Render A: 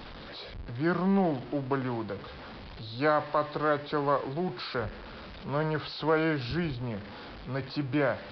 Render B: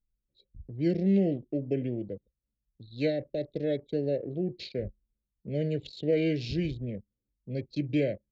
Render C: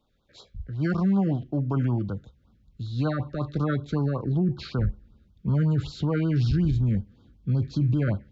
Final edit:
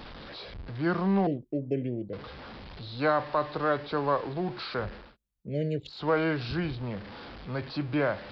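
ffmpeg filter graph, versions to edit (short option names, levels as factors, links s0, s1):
-filter_complex "[1:a]asplit=2[s0][s1];[0:a]asplit=3[s2][s3][s4];[s2]atrim=end=1.272[s5];[s0]atrim=start=1.268:end=2.132[s6];[s3]atrim=start=2.128:end=5.17[s7];[s1]atrim=start=4.93:end=6.1[s8];[s4]atrim=start=5.86[s9];[s5][s6]acrossfade=d=0.004:c1=hsin:c2=hsin[s10];[s10][s7]acrossfade=d=0.004:c1=hsin:c2=hsin[s11];[s11][s8]acrossfade=d=0.24:c1=tri:c2=tri[s12];[s12][s9]acrossfade=d=0.24:c1=tri:c2=tri"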